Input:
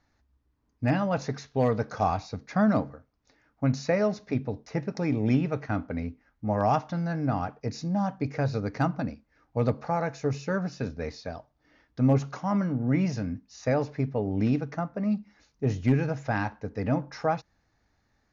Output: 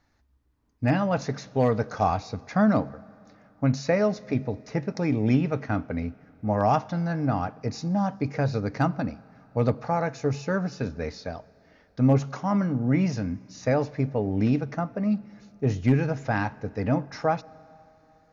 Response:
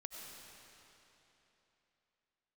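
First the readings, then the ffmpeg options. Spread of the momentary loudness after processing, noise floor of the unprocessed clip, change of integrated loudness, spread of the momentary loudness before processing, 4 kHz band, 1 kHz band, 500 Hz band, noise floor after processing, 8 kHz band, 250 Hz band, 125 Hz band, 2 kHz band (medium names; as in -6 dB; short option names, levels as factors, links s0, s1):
9 LU, -72 dBFS, +2.0 dB, 9 LU, +2.0 dB, +2.0 dB, +2.0 dB, -62 dBFS, no reading, +2.0 dB, +2.0 dB, +2.0 dB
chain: -filter_complex "[0:a]asplit=2[s0][s1];[1:a]atrim=start_sample=2205[s2];[s1][s2]afir=irnorm=-1:irlink=0,volume=0.15[s3];[s0][s3]amix=inputs=2:normalize=0,volume=1.19"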